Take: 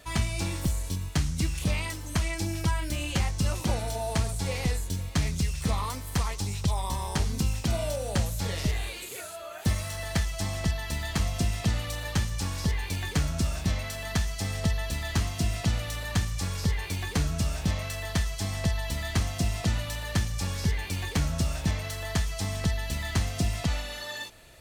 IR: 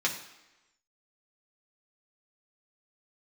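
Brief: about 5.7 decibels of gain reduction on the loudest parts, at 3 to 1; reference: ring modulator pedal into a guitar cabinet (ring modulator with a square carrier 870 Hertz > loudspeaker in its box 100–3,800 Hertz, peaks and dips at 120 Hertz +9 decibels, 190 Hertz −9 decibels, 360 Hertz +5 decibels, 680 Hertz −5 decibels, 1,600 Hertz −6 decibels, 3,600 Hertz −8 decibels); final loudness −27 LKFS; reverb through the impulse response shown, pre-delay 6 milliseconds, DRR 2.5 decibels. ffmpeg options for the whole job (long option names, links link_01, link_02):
-filter_complex "[0:a]acompressor=threshold=-29dB:ratio=3,asplit=2[link_01][link_02];[1:a]atrim=start_sample=2205,adelay=6[link_03];[link_02][link_03]afir=irnorm=-1:irlink=0,volume=-11dB[link_04];[link_01][link_04]amix=inputs=2:normalize=0,aeval=exprs='val(0)*sgn(sin(2*PI*870*n/s))':channel_layout=same,highpass=100,equalizer=frequency=120:width_type=q:width=4:gain=9,equalizer=frequency=190:width_type=q:width=4:gain=-9,equalizer=frequency=360:width_type=q:width=4:gain=5,equalizer=frequency=680:width_type=q:width=4:gain=-5,equalizer=frequency=1600:width_type=q:width=4:gain=-6,equalizer=frequency=3600:width_type=q:width=4:gain=-8,lowpass=frequency=3800:width=0.5412,lowpass=frequency=3800:width=1.3066,volume=6.5dB"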